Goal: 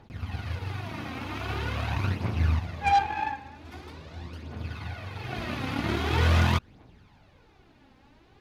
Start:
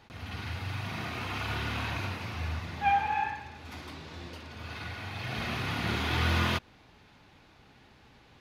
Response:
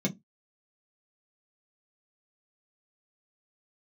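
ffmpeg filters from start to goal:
-af "tiltshelf=frequency=970:gain=4,aphaser=in_gain=1:out_gain=1:delay=3.9:decay=0.51:speed=0.44:type=triangular,aeval=exprs='0.224*(cos(1*acos(clip(val(0)/0.224,-1,1)))-cos(1*PI/2))+0.0447*(cos(5*acos(clip(val(0)/0.224,-1,1)))-cos(5*PI/2))+0.0398*(cos(7*acos(clip(val(0)/0.224,-1,1)))-cos(7*PI/2))':channel_layout=same"

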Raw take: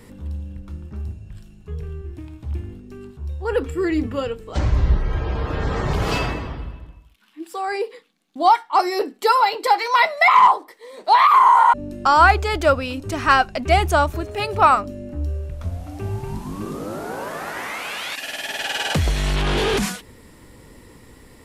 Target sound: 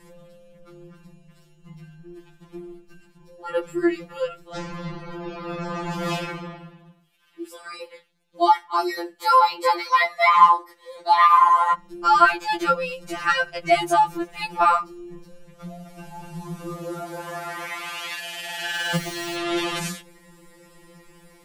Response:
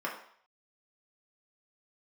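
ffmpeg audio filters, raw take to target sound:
-filter_complex "[0:a]asettb=1/sr,asplit=3[link_01][link_02][link_03];[link_01]atrim=end=18.744[link_04];[link_02]atrim=start=18.74:end=19.37,asetpts=PTS-STARTPTS,afade=type=in:duration=0.004:curve=qsin,afade=type=out:start_time=0.626:duration=0.004:curve=qsin,acrusher=bits=5:mode=log:mix=0:aa=0.000001[link_05];[link_03]atrim=start=19.366[link_06];[link_04][link_05]acrossfade=duration=0.004:curve1=hsin:curve2=qsin[link_07];[link_07][link_06]acrossfade=duration=0.004:curve1=qsin:curve2=hsin,asplit=2[link_08][link_09];[1:a]atrim=start_sample=2205,asetrate=57330,aresample=44100,lowpass=5600[link_10];[link_09][link_10]afir=irnorm=-1:irlink=0,volume=-27dB[link_11];[link_08][link_11]amix=inputs=2:normalize=0,afftfilt=real='re*2.83*eq(mod(b,8),0)':imag='im*2.83*eq(mod(b,8),0)':win_size=2048:overlap=0.75,volume=-1dB"

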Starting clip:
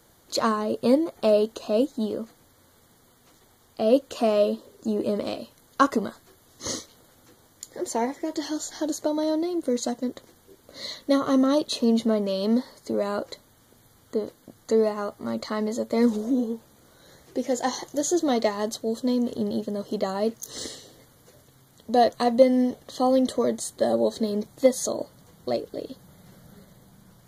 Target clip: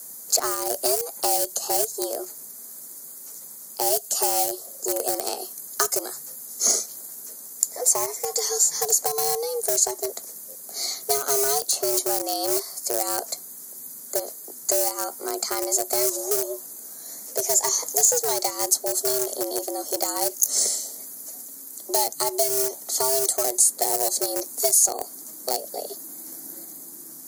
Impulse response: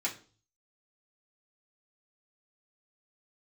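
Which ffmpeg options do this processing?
-filter_complex "[0:a]afreqshift=140,asplit=2[link_01][link_02];[link_02]aeval=exprs='val(0)*gte(abs(val(0)),0.112)':channel_layout=same,volume=-9dB[link_03];[link_01][link_03]amix=inputs=2:normalize=0,acrossover=split=180|450|2900[link_04][link_05][link_06][link_07];[link_04]acompressor=threshold=-52dB:ratio=4[link_08];[link_05]acompressor=threshold=-36dB:ratio=4[link_09];[link_06]acompressor=threshold=-29dB:ratio=4[link_10];[link_07]acompressor=threshold=-38dB:ratio=4[link_11];[link_08][link_09][link_10][link_11]amix=inputs=4:normalize=0,aexciter=amount=8.5:drive=7.4:freq=5200,volume=1dB"

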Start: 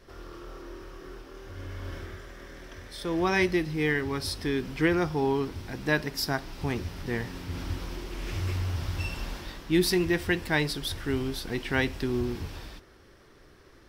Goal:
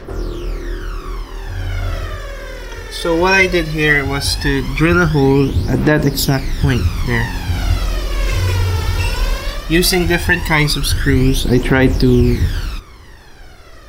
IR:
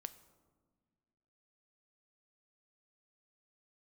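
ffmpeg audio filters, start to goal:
-af "aphaser=in_gain=1:out_gain=1:delay=2.3:decay=0.69:speed=0.17:type=triangular,alimiter=level_in=14.5dB:limit=-1dB:release=50:level=0:latency=1,volume=-1dB"

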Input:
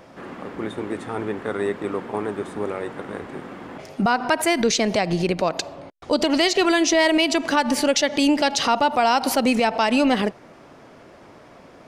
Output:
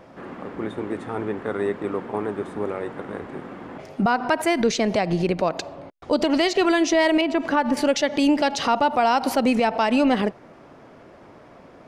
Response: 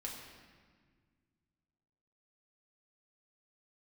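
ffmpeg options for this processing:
-filter_complex "[0:a]asettb=1/sr,asplit=3[link_01][link_02][link_03];[link_01]atrim=end=7.214[link_04];[link_02]atrim=start=7.21:end=7.77,asetpts=PTS-STARTPTS,afade=type=in:duration=0.004:curve=qsin,afade=type=out:start_time=0.556:duration=0.004:curve=qsin,acrossover=split=2600[link_05][link_06];[link_06]acompressor=threshold=-39dB:ratio=4:attack=1:release=60[link_07];[link_05][link_07]amix=inputs=2:normalize=0[link_08];[link_03]atrim=start=7.766[link_09];[link_04][link_08]acrossfade=duration=0.004:curve1=hsin:curve2=qsin[link_10];[link_10][link_09]acrossfade=duration=0.004:curve1=qsin:curve2=hsin,highshelf=frequency=2900:gain=-8"

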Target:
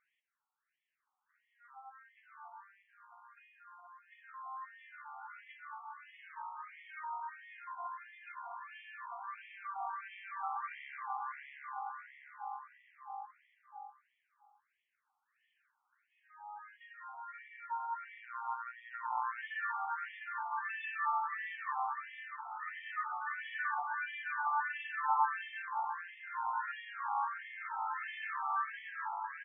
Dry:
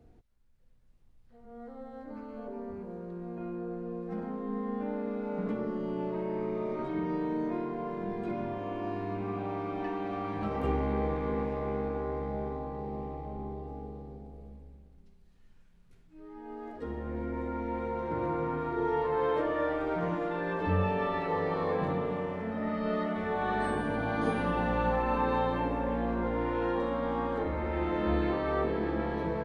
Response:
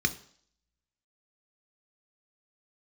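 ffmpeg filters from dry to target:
-filter_complex "[0:a]asettb=1/sr,asplit=3[link_01][link_02][link_03];[link_01]atrim=end=18.214[link_04];[link_02]atrim=start=18.21:end=19.38,asetpts=PTS-STARTPTS,afade=type=in:duration=0.004:curve=qsin,afade=type=out:start_time=1.166:duration=0.004:curve=qsin,tremolo=f=120:d=0.75[link_05];[link_03]atrim=start=19.376[link_06];[link_04][link_05]acrossfade=duration=0.004:curve1=hsin:curve2=qsin[link_07];[link_07][link_06]acrossfade=duration=0.004:curve1=qsin:curve2=hsin,afftfilt=real='re*between(b*sr/1024,1000*pow(2500/1000,0.5+0.5*sin(2*PI*1.5*pts/sr))/1.41,1000*pow(2500/1000,0.5+0.5*sin(2*PI*1.5*pts/sr))*1.41)':imag='im*between(b*sr/1024,1000*pow(2500/1000,0.5+0.5*sin(2*PI*1.5*pts/sr))/1.41,1000*pow(2500/1000,0.5+0.5*sin(2*PI*1.5*pts/sr))*1.41)':win_size=1024:overlap=0.75,volume=2.5dB"

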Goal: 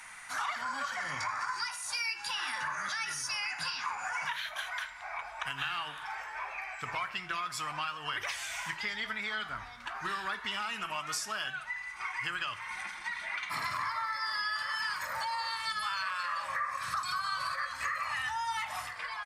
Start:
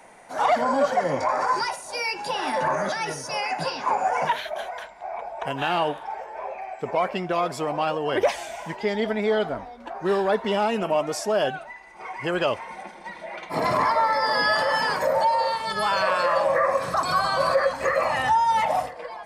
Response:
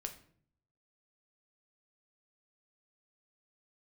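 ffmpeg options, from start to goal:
-filter_complex "[0:a]firequalizer=gain_entry='entry(100,0);entry(170,-10);entry(500,-21);entry(1200,8)':delay=0.05:min_phase=1,acompressor=threshold=-32dB:ratio=5,asplit=2[link_01][link_02];[1:a]atrim=start_sample=2205,asetrate=34839,aresample=44100[link_03];[link_02][link_03]afir=irnorm=-1:irlink=0,volume=0.5dB[link_04];[link_01][link_04]amix=inputs=2:normalize=0,volume=-7dB"

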